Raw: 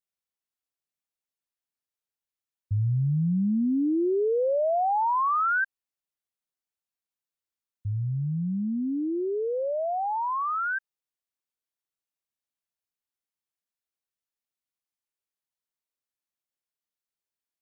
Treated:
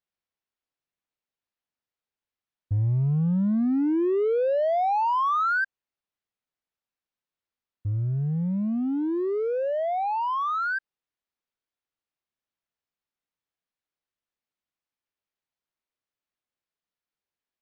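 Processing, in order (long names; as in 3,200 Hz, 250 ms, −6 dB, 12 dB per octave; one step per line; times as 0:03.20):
in parallel at −4.5 dB: hard clipping −33 dBFS, distortion −8 dB
on the sum: high-frequency loss of the air 160 metres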